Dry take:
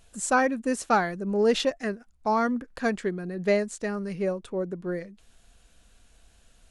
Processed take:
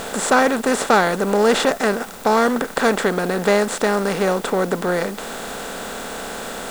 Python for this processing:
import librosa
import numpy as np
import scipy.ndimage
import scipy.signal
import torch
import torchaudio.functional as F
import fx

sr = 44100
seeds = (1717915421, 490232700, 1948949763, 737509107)

p1 = fx.bin_compress(x, sr, power=0.4)
p2 = fx.quant_dither(p1, sr, seeds[0], bits=6, dither='triangular')
y = p1 + (p2 * librosa.db_to_amplitude(-6.0))